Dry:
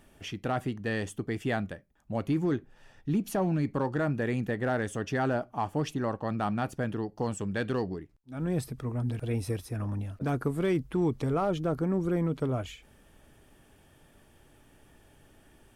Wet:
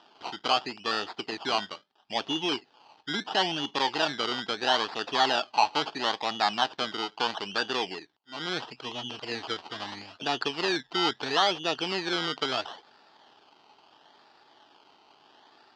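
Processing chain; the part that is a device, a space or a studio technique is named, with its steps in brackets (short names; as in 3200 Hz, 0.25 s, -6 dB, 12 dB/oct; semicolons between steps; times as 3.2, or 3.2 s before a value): circuit-bent sampling toy (decimation with a swept rate 20×, swing 60% 0.75 Hz; speaker cabinet 530–5100 Hz, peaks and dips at 540 Hz -8 dB, 850 Hz +6 dB, 2200 Hz -6 dB, 3100 Hz +9 dB, 4700 Hz +7 dB); gain +6 dB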